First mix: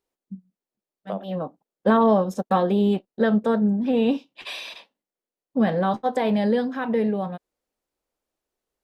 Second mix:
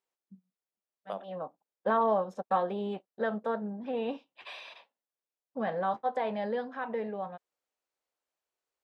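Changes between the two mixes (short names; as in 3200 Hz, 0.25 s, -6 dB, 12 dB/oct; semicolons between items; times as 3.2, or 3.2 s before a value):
first voice: add band-pass 600 Hz, Q 0.69; master: add bell 290 Hz -12.5 dB 2.4 oct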